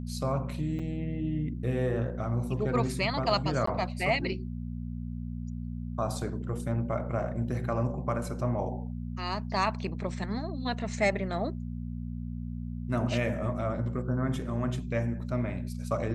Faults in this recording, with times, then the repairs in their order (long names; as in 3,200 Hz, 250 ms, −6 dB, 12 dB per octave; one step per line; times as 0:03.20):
mains hum 60 Hz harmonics 4 −36 dBFS
0:00.79–0:00.80: drop-out 5.5 ms
0:03.66–0:03.67: drop-out 14 ms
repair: hum removal 60 Hz, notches 4
repair the gap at 0:00.79, 5.5 ms
repair the gap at 0:03.66, 14 ms